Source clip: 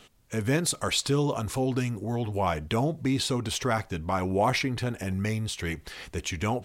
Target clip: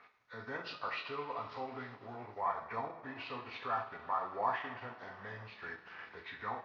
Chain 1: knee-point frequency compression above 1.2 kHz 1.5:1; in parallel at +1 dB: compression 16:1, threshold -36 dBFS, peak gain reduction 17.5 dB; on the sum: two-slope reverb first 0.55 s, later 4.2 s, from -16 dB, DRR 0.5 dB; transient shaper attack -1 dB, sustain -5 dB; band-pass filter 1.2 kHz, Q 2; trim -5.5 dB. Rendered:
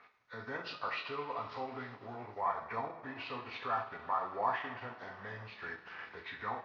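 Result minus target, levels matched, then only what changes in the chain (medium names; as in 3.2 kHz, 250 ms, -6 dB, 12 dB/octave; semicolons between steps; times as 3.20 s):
compression: peak gain reduction -8 dB
change: compression 16:1, threshold -44.5 dBFS, peak gain reduction 25.5 dB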